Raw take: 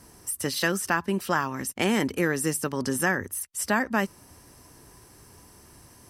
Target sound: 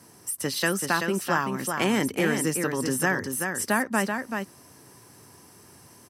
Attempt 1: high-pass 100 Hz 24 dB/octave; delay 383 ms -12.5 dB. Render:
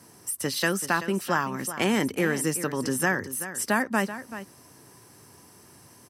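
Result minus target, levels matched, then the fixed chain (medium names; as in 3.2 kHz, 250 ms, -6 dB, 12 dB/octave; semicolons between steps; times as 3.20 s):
echo-to-direct -7 dB
high-pass 100 Hz 24 dB/octave; delay 383 ms -5.5 dB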